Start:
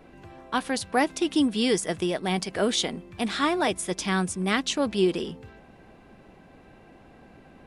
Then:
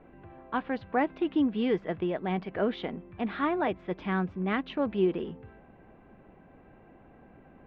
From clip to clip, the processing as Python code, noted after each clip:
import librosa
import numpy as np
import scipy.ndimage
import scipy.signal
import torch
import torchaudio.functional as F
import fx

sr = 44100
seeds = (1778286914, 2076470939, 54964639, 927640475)

y = scipy.signal.sosfilt(scipy.signal.bessel(6, 1800.0, 'lowpass', norm='mag', fs=sr, output='sos'), x)
y = F.gain(torch.from_numpy(y), -3.0).numpy()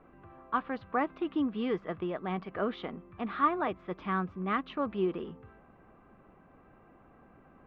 y = fx.peak_eq(x, sr, hz=1200.0, db=13.0, octaves=0.31)
y = F.gain(torch.from_numpy(y), -4.5).numpy()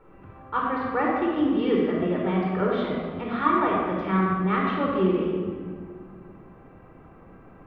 y = fx.room_shoebox(x, sr, seeds[0], volume_m3=2500.0, walls='mixed', distance_m=4.4)
y = F.gain(torch.from_numpy(y), 1.0).numpy()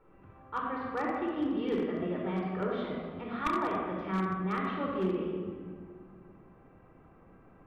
y = np.minimum(x, 2.0 * 10.0 ** (-15.0 / 20.0) - x)
y = F.gain(torch.from_numpy(y), -8.5).numpy()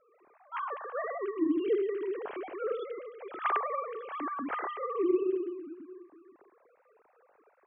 y = fx.sine_speech(x, sr)